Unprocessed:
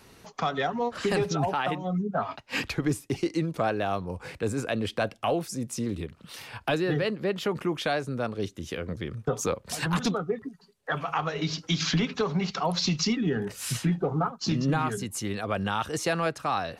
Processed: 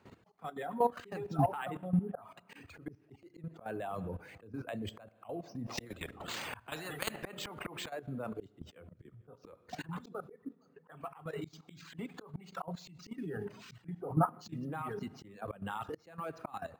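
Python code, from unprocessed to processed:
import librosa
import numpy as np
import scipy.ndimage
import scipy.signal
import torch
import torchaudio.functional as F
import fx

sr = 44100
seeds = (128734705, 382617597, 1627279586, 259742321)

y = np.repeat(scipy.signal.resample_poly(x, 1, 4), 4)[:len(x)]
y = fx.high_shelf(y, sr, hz=5700.0, db=-6.5)
y = fx.echo_wet_lowpass(y, sr, ms=464, feedback_pct=47, hz=2700.0, wet_db=-23.0)
y = fx.rev_schroeder(y, sr, rt60_s=0.97, comb_ms=25, drr_db=9.0)
y = fx.dereverb_blind(y, sr, rt60_s=1.3)
y = scipy.signal.sosfilt(scipy.signal.butter(4, 76.0, 'highpass', fs=sr, output='sos'), y)
y = fx.auto_swell(y, sr, attack_ms=381.0)
y = fx.high_shelf(y, sr, hz=2500.0, db=-9.5)
y = fx.level_steps(y, sr, step_db=14)
y = fx.spectral_comp(y, sr, ratio=4.0, at=(5.66, 7.88), fade=0.02)
y = y * librosa.db_to_amplitude(3.0)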